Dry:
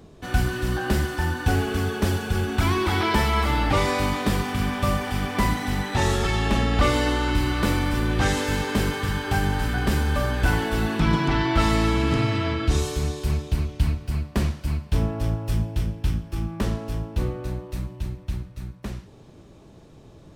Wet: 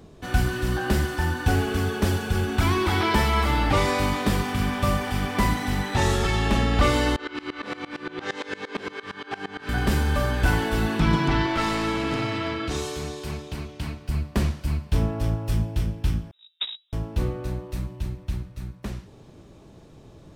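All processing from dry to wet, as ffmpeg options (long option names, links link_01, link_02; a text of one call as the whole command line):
ffmpeg -i in.wav -filter_complex "[0:a]asettb=1/sr,asplit=3[link_01][link_02][link_03];[link_01]atrim=end=7.164[link_04];[link_02]atrim=start=7.16:end=9.69,asetpts=PTS-STARTPTS,afade=type=in:duration=0.004:curve=qsin,afade=type=out:start_time=2.526:duration=0.004:curve=qsin,highpass=340,lowpass=3900,asplit=2[link_05][link_06];[link_06]adelay=30,volume=-3dB[link_07];[link_05][link_07]amix=inputs=2:normalize=0,atrim=end_sample=111573,aeval=exprs='val(0)*pow(10,-22*if(lt(mod(-8.7*n/s,1),2*abs(-8.7)/1000),1-mod(-8.7*n/s,1)/(2*abs(-8.7)/1000),(mod(-8.7*n/s,1)-2*abs(-8.7)/1000)/(1-2*abs(-8.7)/1000))/20)':channel_layout=same[link_08];[link_03]atrim=start=9.686[link_09];[link_04][link_08]acrossfade=duration=0.004:curve1=hsin:curve2=qsin[link_10];[link_10][link_09]acrossfade=duration=0.004:curve1=qsin:curve2=hsin,asettb=1/sr,asplit=3[link_11][link_12][link_13];[link_11]atrim=end=11.464[link_14];[link_12]atrim=start=11.46:end=14.09,asetpts=PTS-STARTPTS,afade=type=in:duration=0.004:curve=qsin,afade=type=out:start_time=2.626:duration=0.004:curve=qsin,highpass=frequency=260:poles=1,aeval=exprs='clip(val(0),-1,0.0708)':channel_layout=same,highshelf=frequency=8000:gain=-6[link_15];[link_13]atrim=start=14.086[link_16];[link_14][link_15]acrossfade=duration=0.004:curve1=hsin:curve2=qsin[link_17];[link_17][link_16]acrossfade=duration=0.004:curve1=qsin:curve2=hsin,asettb=1/sr,asplit=3[link_18][link_19][link_20];[link_18]atrim=end=16.314[link_21];[link_19]atrim=start=16.31:end=16.93,asetpts=PTS-STARTPTS,afade=type=in:duration=0.004:curve=qsin,afade=type=out:start_time=0.616:duration=0.004:curve=qsin,highpass=frequency=81:poles=1,agate=range=-38dB:threshold=-25dB:ratio=16:release=100:detection=peak,lowpass=frequency=3300:width_type=q:width=0.5098,lowpass=frequency=3300:width_type=q:width=0.6013,lowpass=frequency=3300:width_type=q:width=0.9,lowpass=frequency=3300:width_type=q:width=2.563,afreqshift=-3900[link_22];[link_20]atrim=start=16.926[link_23];[link_21][link_22]acrossfade=duration=0.004:curve1=hsin:curve2=qsin[link_24];[link_24][link_23]acrossfade=duration=0.004:curve1=qsin:curve2=hsin" out.wav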